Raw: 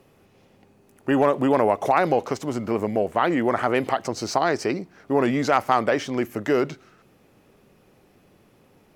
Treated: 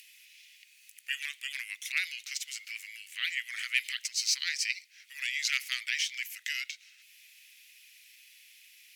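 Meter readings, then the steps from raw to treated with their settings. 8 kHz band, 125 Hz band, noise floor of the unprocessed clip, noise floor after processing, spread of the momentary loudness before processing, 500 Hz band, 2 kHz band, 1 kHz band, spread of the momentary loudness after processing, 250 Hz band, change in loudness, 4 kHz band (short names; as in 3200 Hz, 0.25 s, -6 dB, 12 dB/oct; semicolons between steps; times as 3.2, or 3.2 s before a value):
+5.0 dB, under -40 dB, -58 dBFS, -60 dBFS, 7 LU, under -40 dB, -2.0 dB, -36.0 dB, 12 LU, under -40 dB, -9.5 dB, +5.0 dB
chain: steep high-pass 2100 Hz 48 dB/oct; in parallel at -2 dB: upward compressor, threshold -45 dBFS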